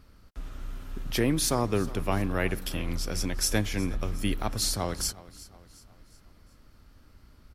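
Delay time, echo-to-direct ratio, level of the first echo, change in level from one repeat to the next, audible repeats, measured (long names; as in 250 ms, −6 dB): 364 ms, −18.0 dB, −19.0 dB, −6.5 dB, 3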